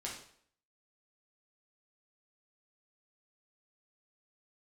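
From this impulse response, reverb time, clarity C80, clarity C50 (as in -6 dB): 0.60 s, 9.0 dB, 4.5 dB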